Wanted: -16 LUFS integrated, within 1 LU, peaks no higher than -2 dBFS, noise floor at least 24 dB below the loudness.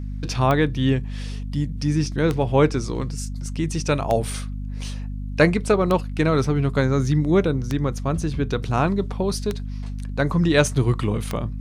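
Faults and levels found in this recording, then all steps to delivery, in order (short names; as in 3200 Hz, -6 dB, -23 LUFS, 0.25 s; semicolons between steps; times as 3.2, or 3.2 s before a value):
clicks 7; hum 50 Hz; harmonics up to 250 Hz; hum level -27 dBFS; loudness -22.5 LUFS; peak -4.0 dBFS; loudness target -16.0 LUFS
-> de-click; de-hum 50 Hz, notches 5; gain +6.5 dB; limiter -2 dBFS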